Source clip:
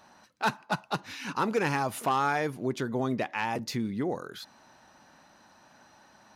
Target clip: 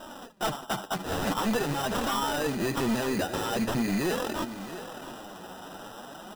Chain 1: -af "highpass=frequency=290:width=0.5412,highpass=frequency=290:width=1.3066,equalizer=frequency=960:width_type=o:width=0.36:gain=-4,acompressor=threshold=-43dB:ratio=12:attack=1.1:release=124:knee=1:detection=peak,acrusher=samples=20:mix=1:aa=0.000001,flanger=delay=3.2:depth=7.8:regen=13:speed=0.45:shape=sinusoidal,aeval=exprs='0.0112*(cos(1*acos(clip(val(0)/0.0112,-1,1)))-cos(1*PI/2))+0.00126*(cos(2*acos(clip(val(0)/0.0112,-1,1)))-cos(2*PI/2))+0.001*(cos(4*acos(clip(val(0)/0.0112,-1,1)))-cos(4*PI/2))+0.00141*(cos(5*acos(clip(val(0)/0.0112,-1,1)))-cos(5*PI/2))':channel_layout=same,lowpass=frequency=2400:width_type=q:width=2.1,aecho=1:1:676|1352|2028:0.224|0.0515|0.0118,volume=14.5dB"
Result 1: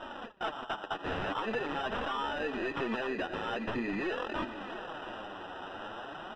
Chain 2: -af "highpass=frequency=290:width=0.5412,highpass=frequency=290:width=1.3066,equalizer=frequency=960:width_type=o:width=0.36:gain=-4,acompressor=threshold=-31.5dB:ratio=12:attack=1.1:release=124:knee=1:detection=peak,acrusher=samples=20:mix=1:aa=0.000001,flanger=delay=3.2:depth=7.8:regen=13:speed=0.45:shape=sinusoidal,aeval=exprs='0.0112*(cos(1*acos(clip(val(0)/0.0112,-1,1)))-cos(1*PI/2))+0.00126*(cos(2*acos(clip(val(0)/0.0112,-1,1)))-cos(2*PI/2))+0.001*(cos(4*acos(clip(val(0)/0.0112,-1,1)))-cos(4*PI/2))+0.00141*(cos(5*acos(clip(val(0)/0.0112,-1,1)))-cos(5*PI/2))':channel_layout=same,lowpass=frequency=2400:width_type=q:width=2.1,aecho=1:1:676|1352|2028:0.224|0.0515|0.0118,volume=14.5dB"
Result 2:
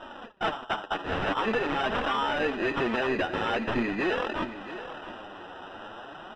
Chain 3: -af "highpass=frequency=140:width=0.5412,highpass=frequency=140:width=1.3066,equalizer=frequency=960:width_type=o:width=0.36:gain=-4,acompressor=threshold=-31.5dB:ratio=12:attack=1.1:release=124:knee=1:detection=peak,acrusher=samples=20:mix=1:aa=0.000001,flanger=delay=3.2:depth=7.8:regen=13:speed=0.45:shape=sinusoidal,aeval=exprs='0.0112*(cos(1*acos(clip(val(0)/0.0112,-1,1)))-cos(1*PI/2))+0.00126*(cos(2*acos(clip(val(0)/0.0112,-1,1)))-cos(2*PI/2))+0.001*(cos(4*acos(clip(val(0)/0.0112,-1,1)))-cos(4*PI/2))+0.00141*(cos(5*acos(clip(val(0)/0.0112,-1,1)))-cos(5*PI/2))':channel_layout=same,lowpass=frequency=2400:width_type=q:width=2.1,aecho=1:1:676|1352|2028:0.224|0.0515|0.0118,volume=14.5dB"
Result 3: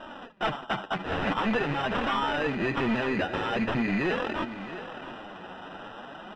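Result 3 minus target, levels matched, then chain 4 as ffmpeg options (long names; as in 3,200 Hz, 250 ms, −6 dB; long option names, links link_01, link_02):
2,000 Hz band +3.5 dB
-af "highpass=frequency=140:width=0.5412,highpass=frequency=140:width=1.3066,equalizer=frequency=960:width_type=o:width=0.36:gain=-4,acompressor=threshold=-31.5dB:ratio=12:attack=1.1:release=124:knee=1:detection=peak,acrusher=samples=20:mix=1:aa=0.000001,flanger=delay=3.2:depth=7.8:regen=13:speed=0.45:shape=sinusoidal,aeval=exprs='0.0112*(cos(1*acos(clip(val(0)/0.0112,-1,1)))-cos(1*PI/2))+0.00126*(cos(2*acos(clip(val(0)/0.0112,-1,1)))-cos(2*PI/2))+0.001*(cos(4*acos(clip(val(0)/0.0112,-1,1)))-cos(4*PI/2))+0.00141*(cos(5*acos(clip(val(0)/0.0112,-1,1)))-cos(5*PI/2))':channel_layout=same,aecho=1:1:676|1352|2028:0.224|0.0515|0.0118,volume=14.5dB"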